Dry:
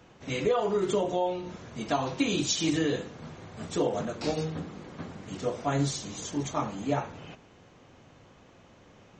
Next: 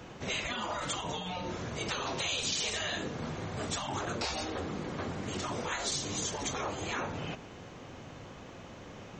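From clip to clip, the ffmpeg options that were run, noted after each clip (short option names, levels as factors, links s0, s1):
-af "afftfilt=real='re*lt(hypot(re,im),0.0794)':imag='im*lt(hypot(re,im),0.0794)':win_size=1024:overlap=0.75,acompressor=threshold=0.00794:ratio=2,volume=2.51"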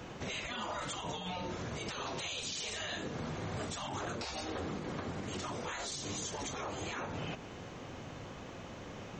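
-af "alimiter=level_in=2.24:limit=0.0631:level=0:latency=1:release=177,volume=0.447,volume=1.12"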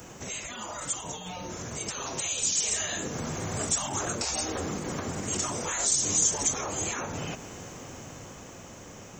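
-af "dynaudnorm=f=500:g=9:m=2,aexciter=amount=8:drive=2.2:freq=5800"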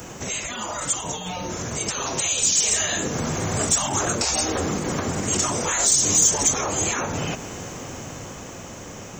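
-af "asoftclip=type=tanh:threshold=0.178,volume=2.51"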